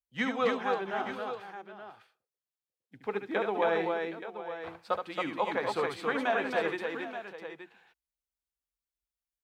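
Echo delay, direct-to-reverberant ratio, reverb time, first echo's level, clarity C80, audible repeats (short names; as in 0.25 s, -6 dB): 72 ms, none, none, -7.0 dB, none, 4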